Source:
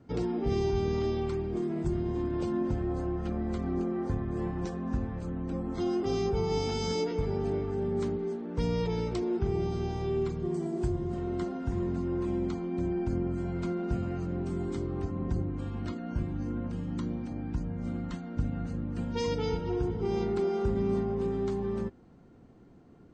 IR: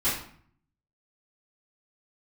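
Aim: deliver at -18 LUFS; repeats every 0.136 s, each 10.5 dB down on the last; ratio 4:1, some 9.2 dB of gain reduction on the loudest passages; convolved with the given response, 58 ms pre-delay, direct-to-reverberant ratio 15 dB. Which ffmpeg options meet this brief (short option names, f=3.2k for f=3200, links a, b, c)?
-filter_complex "[0:a]acompressor=threshold=-36dB:ratio=4,aecho=1:1:136|272|408:0.299|0.0896|0.0269,asplit=2[a][b];[1:a]atrim=start_sample=2205,adelay=58[c];[b][c]afir=irnorm=-1:irlink=0,volume=-26dB[d];[a][d]amix=inputs=2:normalize=0,volume=20.5dB"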